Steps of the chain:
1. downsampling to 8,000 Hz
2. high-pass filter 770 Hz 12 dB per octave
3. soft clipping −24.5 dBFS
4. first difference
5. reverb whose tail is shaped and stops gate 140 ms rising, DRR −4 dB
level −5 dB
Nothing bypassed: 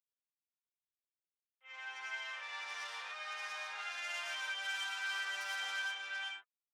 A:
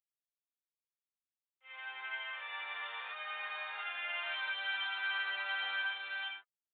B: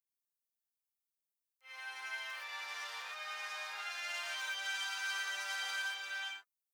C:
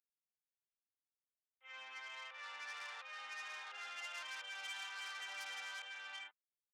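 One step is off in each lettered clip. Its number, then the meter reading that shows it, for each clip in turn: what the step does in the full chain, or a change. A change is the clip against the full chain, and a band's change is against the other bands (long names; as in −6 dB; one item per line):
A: 3, distortion level −15 dB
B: 1, 8 kHz band +3.5 dB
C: 5, change in crest factor +2.0 dB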